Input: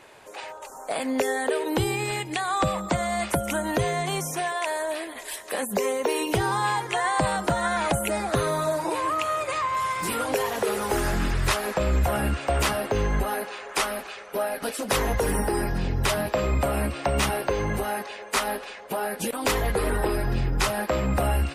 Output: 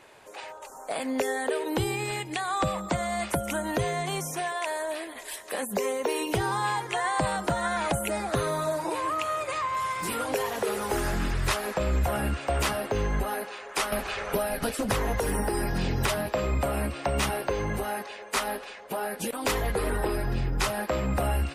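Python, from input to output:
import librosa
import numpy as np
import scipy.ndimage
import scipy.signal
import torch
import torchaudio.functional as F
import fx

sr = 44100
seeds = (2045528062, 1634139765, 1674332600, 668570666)

y = fx.band_squash(x, sr, depth_pct=100, at=(13.92, 16.08))
y = F.gain(torch.from_numpy(y), -3.0).numpy()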